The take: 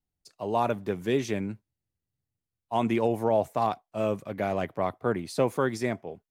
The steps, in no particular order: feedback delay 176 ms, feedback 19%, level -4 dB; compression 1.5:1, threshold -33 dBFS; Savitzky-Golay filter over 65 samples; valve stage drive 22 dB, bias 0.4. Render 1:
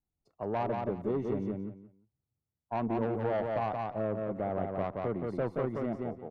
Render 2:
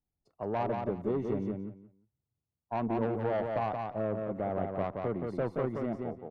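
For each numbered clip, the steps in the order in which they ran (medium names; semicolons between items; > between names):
Savitzky-Golay filter > valve stage > feedback delay > compression; Savitzky-Golay filter > valve stage > compression > feedback delay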